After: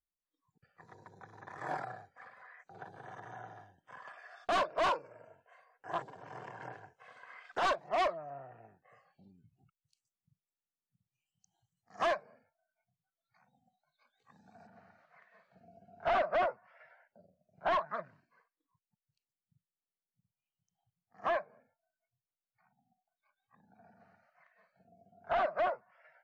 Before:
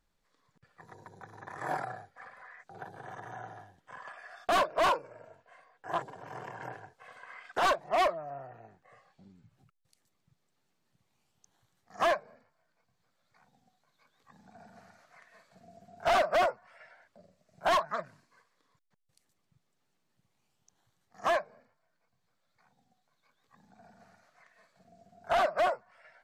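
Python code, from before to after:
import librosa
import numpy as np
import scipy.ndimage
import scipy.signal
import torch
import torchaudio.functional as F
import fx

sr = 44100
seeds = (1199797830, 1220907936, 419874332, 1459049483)

y = fx.noise_reduce_blind(x, sr, reduce_db=22)
y = fx.lowpass(y, sr, hz=fx.steps((0.0, 6800.0), (14.67, 2600.0)), slope=12)
y = F.gain(torch.from_numpy(y), -4.0).numpy()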